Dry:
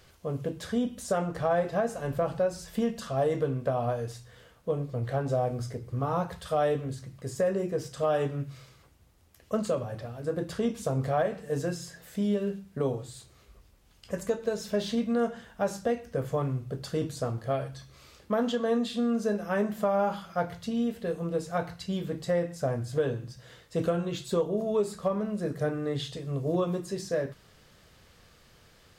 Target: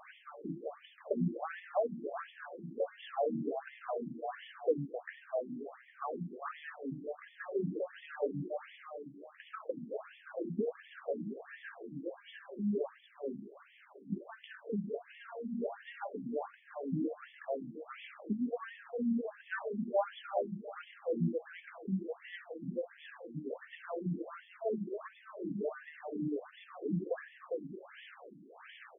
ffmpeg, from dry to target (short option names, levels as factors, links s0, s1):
-filter_complex "[0:a]highshelf=f=9500:g=9.5,bandreject=f=116:t=h:w=4,bandreject=f=232:t=h:w=4,bandreject=f=348:t=h:w=4,bandreject=f=464:t=h:w=4,bandreject=f=580:t=h:w=4,bandreject=f=696:t=h:w=4,bandreject=f=812:t=h:w=4,bandreject=f=928:t=h:w=4,bandreject=f=1044:t=h:w=4,bandreject=f=1160:t=h:w=4,bandreject=f=1276:t=h:w=4,bandreject=f=1392:t=h:w=4,bandreject=f=1508:t=h:w=4,bandreject=f=1624:t=h:w=4,bandreject=f=1740:t=h:w=4,bandreject=f=1856:t=h:w=4,bandreject=f=1972:t=h:w=4,bandreject=f=2088:t=h:w=4,bandreject=f=2204:t=h:w=4,bandreject=f=2320:t=h:w=4,bandreject=f=2436:t=h:w=4,bandreject=f=2552:t=h:w=4,bandreject=f=2668:t=h:w=4,bandreject=f=2784:t=h:w=4,bandreject=f=2900:t=h:w=4,bandreject=f=3016:t=h:w=4,bandreject=f=3132:t=h:w=4,bandreject=f=3248:t=h:w=4,bandreject=f=3364:t=h:w=4,bandreject=f=3480:t=h:w=4,bandreject=f=3596:t=h:w=4,bandreject=f=3712:t=h:w=4,bandreject=f=3828:t=h:w=4,acompressor=threshold=0.00251:ratio=2,asoftclip=type=tanh:threshold=0.0211,aphaser=in_gain=1:out_gain=1:delay=1.5:decay=0.36:speed=1.7:type=triangular,asplit=2[s0][s1];[s1]adelay=404,lowpass=f=3600:p=1,volume=0.631,asplit=2[s2][s3];[s3]adelay=404,lowpass=f=3600:p=1,volume=0.39,asplit=2[s4][s5];[s5]adelay=404,lowpass=f=3600:p=1,volume=0.39,asplit=2[s6][s7];[s7]adelay=404,lowpass=f=3600:p=1,volume=0.39,asplit=2[s8][s9];[s9]adelay=404,lowpass=f=3600:p=1,volume=0.39[s10];[s0][s2][s4][s6][s8][s10]amix=inputs=6:normalize=0,afftfilt=real='re*between(b*sr/1024,230*pow(2500/230,0.5+0.5*sin(2*PI*1.4*pts/sr))/1.41,230*pow(2500/230,0.5+0.5*sin(2*PI*1.4*pts/sr))*1.41)':imag='im*between(b*sr/1024,230*pow(2500/230,0.5+0.5*sin(2*PI*1.4*pts/sr))/1.41,230*pow(2500/230,0.5+0.5*sin(2*PI*1.4*pts/sr))*1.41)':win_size=1024:overlap=0.75,volume=3.98"